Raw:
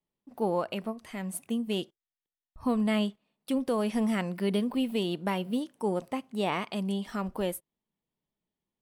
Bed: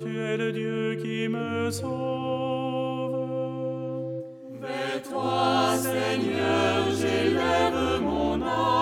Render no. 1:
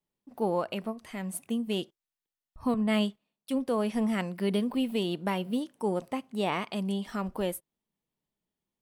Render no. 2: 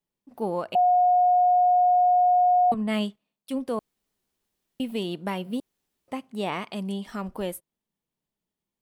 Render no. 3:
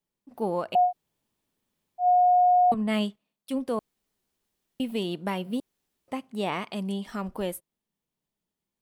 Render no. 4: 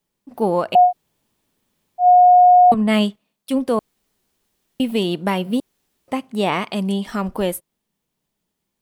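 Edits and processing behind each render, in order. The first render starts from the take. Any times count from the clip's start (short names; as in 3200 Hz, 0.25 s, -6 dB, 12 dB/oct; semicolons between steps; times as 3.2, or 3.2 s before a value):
2.74–4.39 three-band expander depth 70%
0.75–2.72 bleep 721 Hz -16 dBFS; 3.79–4.8 room tone; 5.6–6.08 room tone
0.88–2.03 room tone, crossfade 0.10 s
gain +9.5 dB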